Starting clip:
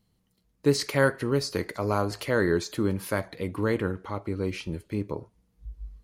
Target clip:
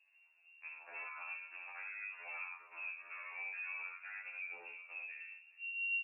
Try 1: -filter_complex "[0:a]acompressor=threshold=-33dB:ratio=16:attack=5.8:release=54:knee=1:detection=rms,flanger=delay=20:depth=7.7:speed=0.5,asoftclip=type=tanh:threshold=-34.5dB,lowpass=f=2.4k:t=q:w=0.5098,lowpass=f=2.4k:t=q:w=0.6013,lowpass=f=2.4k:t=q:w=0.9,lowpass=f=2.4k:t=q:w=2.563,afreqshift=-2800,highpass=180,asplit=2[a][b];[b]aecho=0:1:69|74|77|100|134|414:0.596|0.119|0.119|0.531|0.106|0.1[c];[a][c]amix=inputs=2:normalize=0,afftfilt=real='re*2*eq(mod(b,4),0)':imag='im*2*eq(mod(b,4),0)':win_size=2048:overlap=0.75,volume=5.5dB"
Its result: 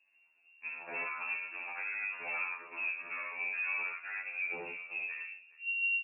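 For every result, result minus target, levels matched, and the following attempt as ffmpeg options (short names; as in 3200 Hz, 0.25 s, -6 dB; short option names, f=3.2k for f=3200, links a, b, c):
250 Hz band +12.0 dB; compressor: peak gain reduction -10.5 dB
-filter_complex "[0:a]acompressor=threshold=-33dB:ratio=16:attack=5.8:release=54:knee=1:detection=rms,flanger=delay=20:depth=7.7:speed=0.5,asoftclip=type=tanh:threshold=-34.5dB,lowpass=f=2.4k:t=q:w=0.5098,lowpass=f=2.4k:t=q:w=0.6013,lowpass=f=2.4k:t=q:w=0.9,lowpass=f=2.4k:t=q:w=2.563,afreqshift=-2800,highpass=640,asplit=2[a][b];[b]aecho=0:1:69|74|77|100|134|414:0.596|0.119|0.119|0.531|0.106|0.1[c];[a][c]amix=inputs=2:normalize=0,afftfilt=real='re*2*eq(mod(b,4),0)':imag='im*2*eq(mod(b,4),0)':win_size=2048:overlap=0.75,volume=5.5dB"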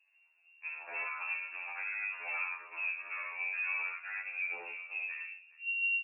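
compressor: peak gain reduction -10.5 dB
-filter_complex "[0:a]acompressor=threshold=-44dB:ratio=16:attack=5.8:release=54:knee=1:detection=rms,flanger=delay=20:depth=7.7:speed=0.5,asoftclip=type=tanh:threshold=-34.5dB,lowpass=f=2.4k:t=q:w=0.5098,lowpass=f=2.4k:t=q:w=0.6013,lowpass=f=2.4k:t=q:w=0.9,lowpass=f=2.4k:t=q:w=2.563,afreqshift=-2800,highpass=640,asplit=2[a][b];[b]aecho=0:1:69|74|77|100|134|414:0.596|0.119|0.119|0.531|0.106|0.1[c];[a][c]amix=inputs=2:normalize=0,afftfilt=real='re*2*eq(mod(b,4),0)':imag='im*2*eq(mod(b,4),0)':win_size=2048:overlap=0.75,volume=5.5dB"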